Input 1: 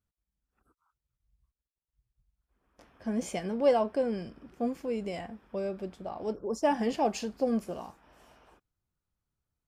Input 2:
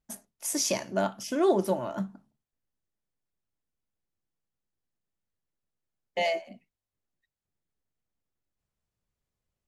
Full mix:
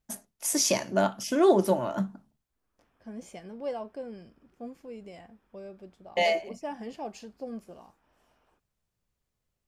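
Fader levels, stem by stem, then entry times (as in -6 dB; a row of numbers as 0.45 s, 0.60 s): -10.0 dB, +3.0 dB; 0.00 s, 0.00 s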